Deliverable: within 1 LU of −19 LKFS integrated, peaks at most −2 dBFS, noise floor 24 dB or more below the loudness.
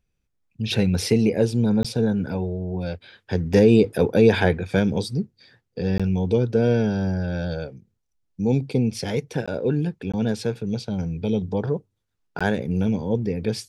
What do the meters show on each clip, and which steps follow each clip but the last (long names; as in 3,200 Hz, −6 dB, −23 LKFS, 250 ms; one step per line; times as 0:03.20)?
number of dropouts 5; longest dropout 16 ms; integrated loudness −23.0 LKFS; sample peak −4.5 dBFS; target loudness −19.0 LKFS
→ repair the gap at 0:01.83/0:05.98/0:09.46/0:10.12/0:12.39, 16 ms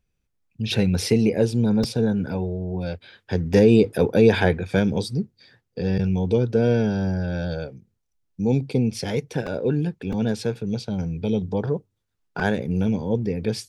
number of dropouts 0; integrated loudness −23.0 LKFS; sample peak −4.5 dBFS; target loudness −19.0 LKFS
→ level +4 dB
brickwall limiter −2 dBFS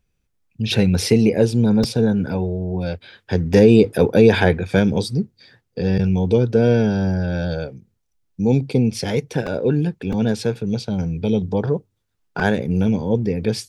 integrated loudness −19.0 LKFS; sample peak −2.0 dBFS; background noise floor −71 dBFS